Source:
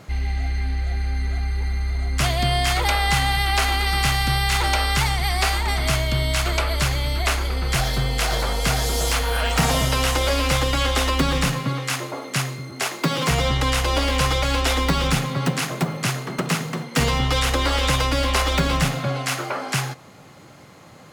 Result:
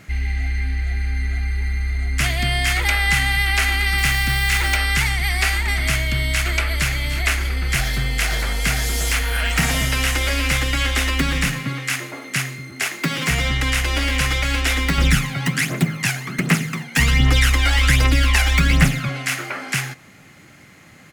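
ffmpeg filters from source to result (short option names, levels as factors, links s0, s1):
-filter_complex "[0:a]asettb=1/sr,asplit=3[s0][s1][s2];[s0]atrim=end=3.984[s3];[s1]atrim=start=3.98:end=4.77,asetpts=PTS-STARTPTS,afade=t=in:d=0.004:c=qsin,afade=t=out:st=0.786:d=0.004:c=qsin,acrusher=bits=4:mode=log:mix=0:aa=0.000001[s4];[s2]atrim=start=4.766[s5];[s3][s4]acrossfade=d=0.004:c1=hsin:c2=qsin[s6];[s6][s5]acrossfade=d=0.004:c1=qsin:c2=hsin,asplit=2[s7][s8];[s8]afade=t=in:st=6.51:d=0.01,afade=t=out:st=6.91:d=0.01,aecho=0:1:300|600|900|1200|1500|1800:0.251189|0.138154|0.0759846|0.0417915|0.0229853|0.0126419[s9];[s7][s9]amix=inputs=2:normalize=0,asettb=1/sr,asplit=3[s10][s11][s12];[s10]atrim=end=14.984[s13];[s11]atrim=start=14.98:end=19.09,asetpts=PTS-STARTPTS,afade=t=in:d=0.004:c=qsin,afade=t=out:st=4.106:d=0.004:c=qsin,aphaser=in_gain=1:out_gain=1:delay=1.4:decay=0.57:speed=1.3:type=triangular[s14];[s12]atrim=start=19.086[s15];[s13][s14]acrossfade=d=0.004:c1=hsin:c2=qsin[s16];[s16][s15]acrossfade=d=0.004:c1=qsin:c2=hsin,equalizer=f=125:t=o:w=1:g=-4,equalizer=f=500:t=o:w=1:g=-8,equalizer=f=1000:t=o:w=1:g=-9,equalizer=f=2000:t=o:w=1:g=7,equalizer=f=4000:t=o:w=1:g=-5,volume=1.33"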